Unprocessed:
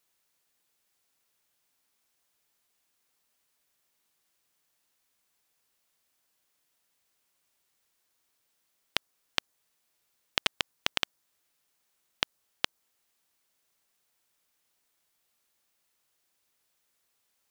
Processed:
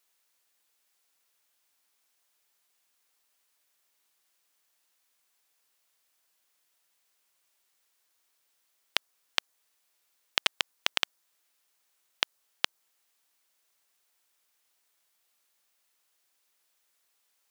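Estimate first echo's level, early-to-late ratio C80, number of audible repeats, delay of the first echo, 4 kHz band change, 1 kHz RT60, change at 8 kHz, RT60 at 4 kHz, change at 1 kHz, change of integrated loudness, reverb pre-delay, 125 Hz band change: no echo audible, no reverb audible, no echo audible, no echo audible, +2.0 dB, no reverb audible, +2.0 dB, no reverb audible, +1.0 dB, +2.0 dB, no reverb audible, can't be measured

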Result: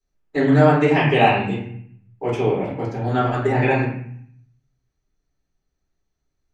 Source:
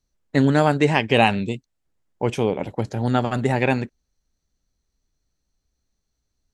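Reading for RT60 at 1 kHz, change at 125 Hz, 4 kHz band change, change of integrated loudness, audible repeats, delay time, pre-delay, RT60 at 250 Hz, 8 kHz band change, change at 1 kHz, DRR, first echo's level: 0.65 s, +2.5 dB, −2.5 dB, +2.0 dB, no echo audible, no echo audible, 3 ms, 0.85 s, can't be measured, +3.0 dB, −11.0 dB, no echo audible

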